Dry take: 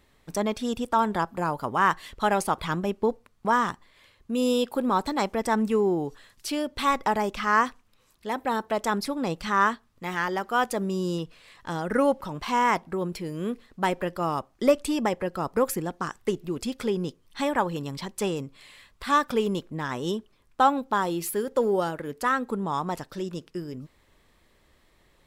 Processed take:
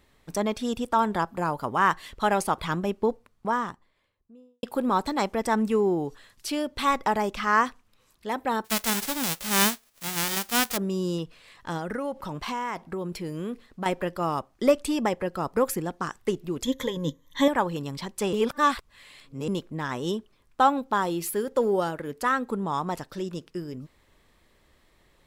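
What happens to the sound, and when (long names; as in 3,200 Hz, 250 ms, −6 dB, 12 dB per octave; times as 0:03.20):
0:02.95–0:04.63: fade out and dull
0:08.64–0:10.76: spectral envelope flattened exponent 0.1
0:11.77–0:13.86: downward compressor, threshold −27 dBFS
0:16.63–0:17.48: EQ curve with evenly spaced ripples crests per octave 1.1, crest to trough 17 dB
0:18.33–0:19.48: reverse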